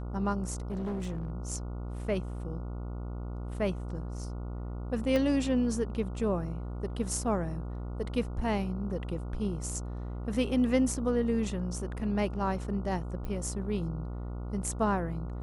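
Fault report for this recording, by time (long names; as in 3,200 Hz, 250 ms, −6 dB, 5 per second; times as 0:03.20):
mains buzz 60 Hz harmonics 24 −37 dBFS
0:00.71–0:01.30: clipping −30.5 dBFS
0:05.16: click −17 dBFS
0:13.25: click −26 dBFS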